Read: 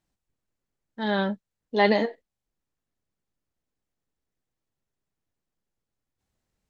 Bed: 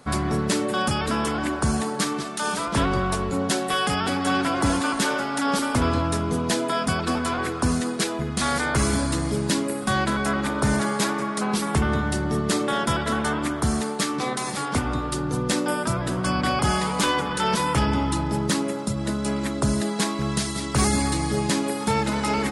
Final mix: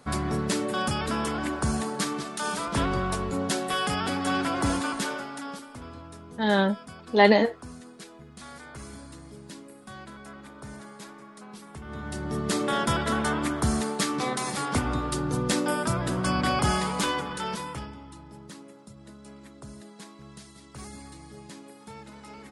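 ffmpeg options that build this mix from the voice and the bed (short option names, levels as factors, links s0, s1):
-filter_complex "[0:a]adelay=5400,volume=1.41[s0];[1:a]volume=5.31,afade=t=out:st=4.72:d=0.94:silence=0.149624,afade=t=in:st=11.83:d=0.9:silence=0.11885,afade=t=out:st=16.65:d=1.3:silence=0.105925[s1];[s0][s1]amix=inputs=2:normalize=0"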